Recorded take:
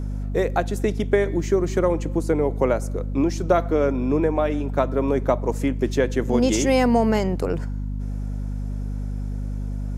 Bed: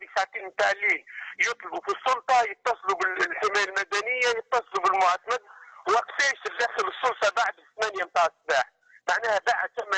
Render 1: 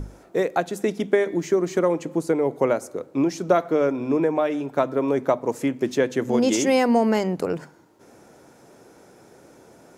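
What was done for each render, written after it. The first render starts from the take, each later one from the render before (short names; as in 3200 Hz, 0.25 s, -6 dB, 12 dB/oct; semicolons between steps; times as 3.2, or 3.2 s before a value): notches 50/100/150/200/250 Hz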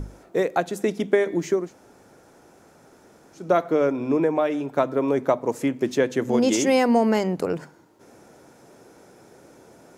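1.62–3.44 room tone, crossfade 0.24 s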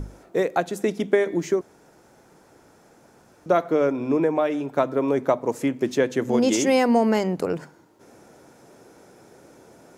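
1.61–3.46 room tone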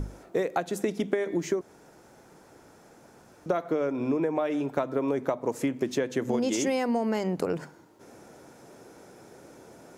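compressor 10:1, threshold -23 dBFS, peak gain reduction 10 dB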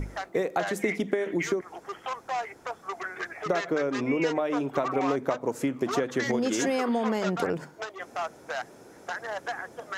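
add bed -10 dB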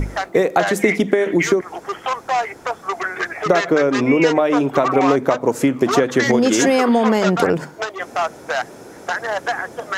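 gain +11.5 dB; limiter -1 dBFS, peak gain reduction 1.5 dB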